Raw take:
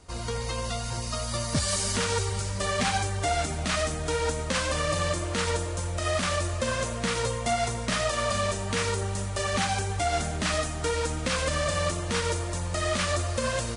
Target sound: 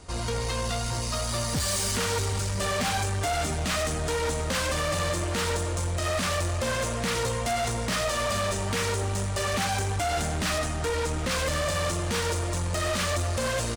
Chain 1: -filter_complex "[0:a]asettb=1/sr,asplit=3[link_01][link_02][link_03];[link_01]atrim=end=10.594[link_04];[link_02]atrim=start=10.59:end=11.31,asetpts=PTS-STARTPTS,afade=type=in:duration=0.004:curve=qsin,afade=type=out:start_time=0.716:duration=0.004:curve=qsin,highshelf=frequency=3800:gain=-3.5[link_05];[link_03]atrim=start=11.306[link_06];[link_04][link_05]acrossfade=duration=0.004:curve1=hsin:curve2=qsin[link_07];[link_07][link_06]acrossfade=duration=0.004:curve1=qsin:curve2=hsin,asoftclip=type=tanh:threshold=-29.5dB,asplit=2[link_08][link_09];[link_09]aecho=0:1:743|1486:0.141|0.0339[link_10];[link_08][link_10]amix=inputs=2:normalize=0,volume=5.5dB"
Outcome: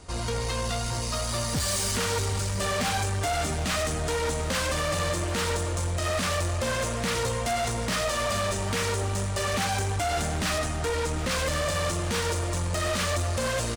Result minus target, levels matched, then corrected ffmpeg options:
echo-to-direct +6.5 dB
-filter_complex "[0:a]asettb=1/sr,asplit=3[link_01][link_02][link_03];[link_01]atrim=end=10.594[link_04];[link_02]atrim=start=10.59:end=11.31,asetpts=PTS-STARTPTS,afade=type=in:duration=0.004:curve=qsin,afade=type=out:start_time=0.716:duration=0.004:curve=qsin,highshelf=frequency=3800:gain=-3.5[link_05];[link_03]atrim=start=11.306[link_06];[link_04][link_05]acrossfade=duration=0.004:curve1=hsin:curve2=qsin[link_07];[link_07][link_06]acrossfade=duration=0.004:curve1=qsin:curve2=hsin,asoftclip=type=tanh:threshold=-29.5dB,asplit=2[link_08][link_09];[link_09]aecho=0:1:743|1486:0.0668|0.016[link_10];[link_08][link_10]amix=inputs=2:normalize=0,volume=5.5dB"

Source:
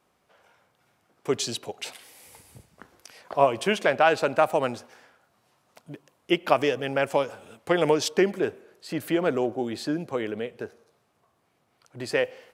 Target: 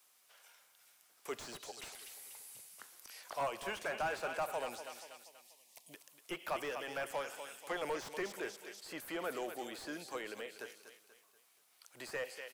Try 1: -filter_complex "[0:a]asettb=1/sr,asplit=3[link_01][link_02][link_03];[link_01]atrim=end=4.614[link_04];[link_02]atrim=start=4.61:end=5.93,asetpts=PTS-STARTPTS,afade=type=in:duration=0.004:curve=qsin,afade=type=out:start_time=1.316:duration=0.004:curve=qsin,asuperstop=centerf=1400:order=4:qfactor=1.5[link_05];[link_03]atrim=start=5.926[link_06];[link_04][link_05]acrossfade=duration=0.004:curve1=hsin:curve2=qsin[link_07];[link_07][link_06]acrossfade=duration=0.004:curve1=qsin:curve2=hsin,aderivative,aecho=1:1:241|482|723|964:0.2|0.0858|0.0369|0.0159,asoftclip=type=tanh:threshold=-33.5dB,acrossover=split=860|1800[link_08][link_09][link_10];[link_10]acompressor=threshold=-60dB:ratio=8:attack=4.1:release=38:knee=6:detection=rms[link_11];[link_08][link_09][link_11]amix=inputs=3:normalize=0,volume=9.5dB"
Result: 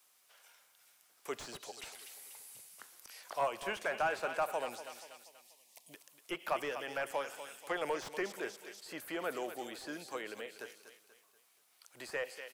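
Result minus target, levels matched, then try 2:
soft clipping: distortion −4 dB
-filter_complex "[0:a]asettb=1/sr,asplit=3[link_01][link_02][link_03];[link_01]atrim=end=4.614[link_04];[link_02]atrim=start=4.61:end=5.93,asetpts=PTS-STARTPTS,afade=type=in:duration=0.004:curve=qsin,afade=type=out:start_time=1.316:duration=0.004:curve=qsin,asuperstop=centerf=1400:order=4:qfactor=1.5[link_05];[link_03]atrim=start=5.926[link_06];[link_04][link_05]acrossfade=duration=0.004:curve1=hsin:curve2=qsin[link_07];[link_07][link_06]acrossfade=duration=0.004:curve1=qsin:curve2=hsin,aderivative,aecho=1:1:241|482|723|964:0.2|0.0858|0.0369|0.0159,asoftclip=type=tanh:threshold=-40dB,acrossover=split=860|1800[link_08][link_09][link_10];[link_10]acompressor=threshold=-60dB:ratio=8:attack=4.1:release=38:knee=6:detection=rms[link_11];[link_08][link_09][link_11]amix=inputs=3:normalize=0,volume=9.5dB"

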